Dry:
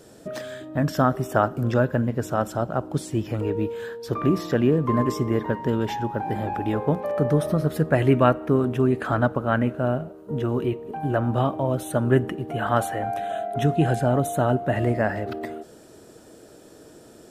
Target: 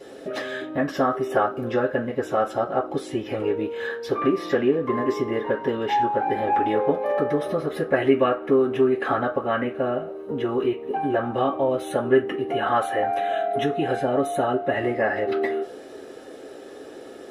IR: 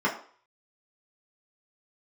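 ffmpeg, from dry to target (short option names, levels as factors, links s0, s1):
-filter_complex "[0:a]acompressor=threshold=0.0316:ratio=2[s0];[1:a]atrim=start_sample=2205,asetrate=83790,aresample=44100[s1];[s0][s1]afir=irnorm=-1:irlink=0"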